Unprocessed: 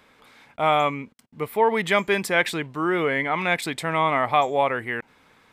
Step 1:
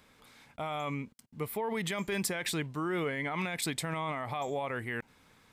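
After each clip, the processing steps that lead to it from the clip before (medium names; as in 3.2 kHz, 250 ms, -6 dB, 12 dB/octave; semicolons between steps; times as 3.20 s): bass shelf 150 Hz +3.5 dB; peak limiter -18.5 dBFS, peak gain reduction 11.5 dB; tone controls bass +5 dB, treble +8 dB; trim -7.5 dB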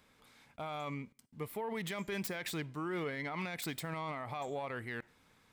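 self-modulated delay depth 0.064 ms; on a send at -24 dB: reverberation RT60 0.40 s, pre-delay 20 ms; on the sum: trim -5 dB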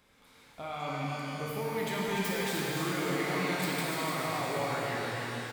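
delay 294 ms -6 dB; pitch-shifted reverb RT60 3.8 s, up +12 st, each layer -8 dB, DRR -4.5 dB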